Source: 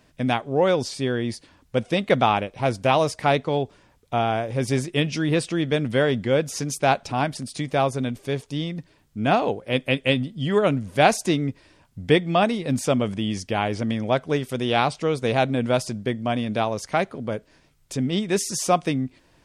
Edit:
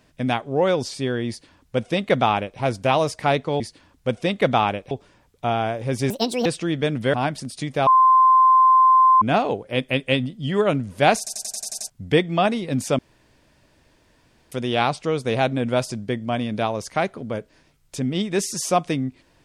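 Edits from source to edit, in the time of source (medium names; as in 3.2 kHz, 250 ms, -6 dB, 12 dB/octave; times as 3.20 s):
1.28–2.59 s: copy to 3.60 s
4.79–5.35 s: speed 157%
6.03–7.11 s: delete
7.84–9.19 s: bleep 1.04 kHz -10.5 dBFS
11.15 s: stutter in place 0.09 s, 8 plays
12.96–14.49 s: room tone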